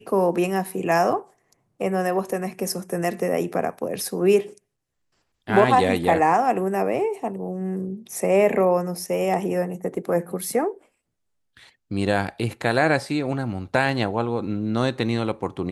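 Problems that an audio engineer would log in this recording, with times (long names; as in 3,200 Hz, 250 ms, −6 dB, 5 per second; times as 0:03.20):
0:09.96: drop-out 3.9 ms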